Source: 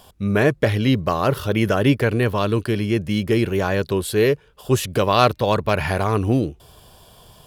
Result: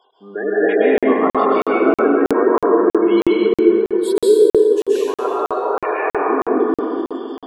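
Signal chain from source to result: 0.6–1.06 sample leveller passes 2; 1.88–2.9 LPF 1600 Hz 12 dB/oct; AGC gain up to 12.5 dB; HPF 370 Hz 24 dB/oct; tilt -2 dB/oct; spectral gate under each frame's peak -15 dB strong; bell 580 Hz -12.5 dB 0.4 oct; 3.57–4.07 fade in quadratic; 4.72–5.25 compressor, threshold -22 dBFS, peak gain reduction 9.5 dB; plate-style reverb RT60 3.1 s, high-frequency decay 0.45×, pre-delay 0.115 s, DRR -8 dB; crackling interface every 0.32 s, samples 2048, zero, from 0.98; gain -4 dB

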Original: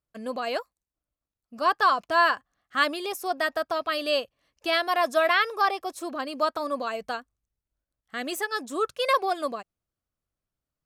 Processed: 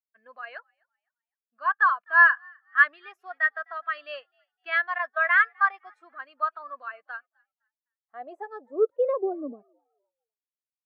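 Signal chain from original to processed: 4.98–5.74 gate -25 dBFS, range -17 dB; band-pass sweep 1700 Hz -> 260 Hz, 7.31–9.62; on a send: frequency-shifting echo 0.255 s, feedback 41%, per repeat +69 Hz, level -21.5 dB; on the sum: spectral expander 1.5:1; gain +8 dB

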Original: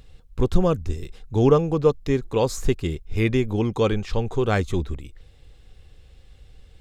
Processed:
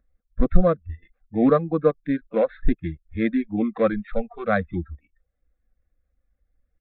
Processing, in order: sample sorter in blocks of 8 samples; reverb removal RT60 0.55 s; fixed phaser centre 600 Hz, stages 8; spectral noise reduction 23 dB; downsampling 8000 Hz; gain +5 dB

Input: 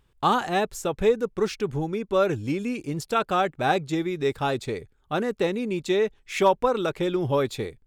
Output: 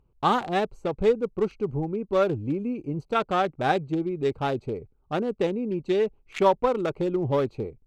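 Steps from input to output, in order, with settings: Wiener smoothing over 25 samples; high shelf 11000 Hz -9.5 dB

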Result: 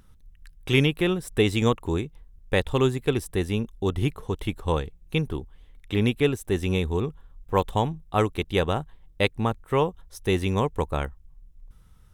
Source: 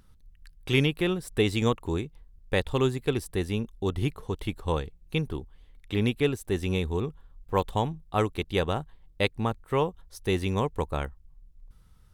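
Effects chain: bell 4500 Hz -6.5 dB 0.22 oct; gain +3 dB

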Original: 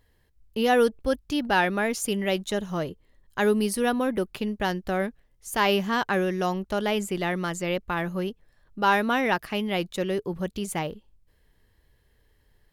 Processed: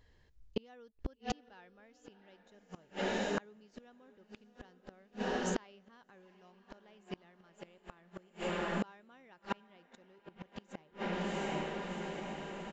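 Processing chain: downsampling 16000 Hz; diffused feedback echo 0.729 s, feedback 59%, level -8.5 dB; flipped gate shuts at -20 dBFS, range -35 dB; gain -1 dB

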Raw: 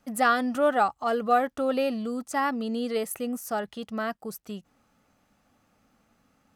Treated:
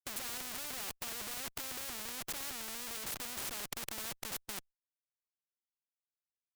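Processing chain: modulation noise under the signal 24 dB; Schmitt trigger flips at -38.5 dBFS; spectral compressor 4:1; gain +1 dB

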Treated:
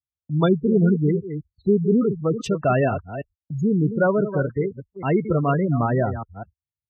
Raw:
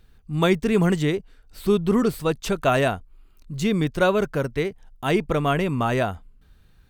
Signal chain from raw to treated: reverse delay 0.201 s, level -9.5 dB; spectral gate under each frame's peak -15 dB strong; gate -40 dBFS, range -41 dB; HPF 83 Hz 24 dB/oct; low shelf 110 Hz +10.5 dB

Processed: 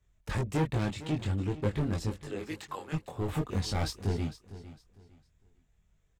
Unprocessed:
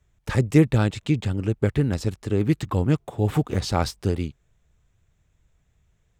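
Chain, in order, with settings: 2.23–2.92 HPF 420 Hz -> 960 Hz 12 dB/oct; overloaded stage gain 18.5 dB; chorus voices 6, 0.44 Hz, delay 22 ms, depth 3.2 ms; feedback echo 0.455 s, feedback 26%, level -15.5 dB; gain -3 dB

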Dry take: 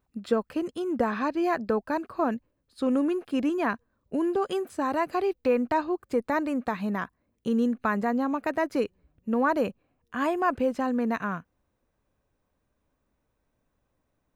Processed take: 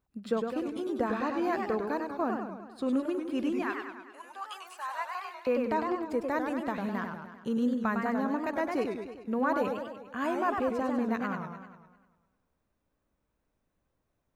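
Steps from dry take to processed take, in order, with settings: 3.62–5.47 HPF 910 Hz 24 dB/oct; warbling echo 0.1 s, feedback 59%, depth 190 cents, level -5 dB; gain -5 dB

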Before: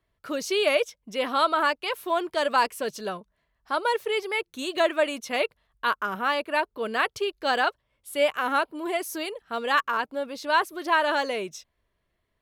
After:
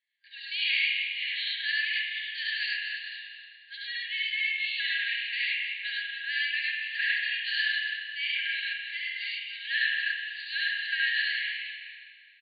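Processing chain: loudspeakers at several distances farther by 24 m -1 dB, 35 m 0 dB, 98 m -9 dB; spring tank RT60 2 s, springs 37/60 ms, chirp 35 ms, DRR 0 dB; FFT band-pass 1600–4700 Hz; gain -3.5 dB

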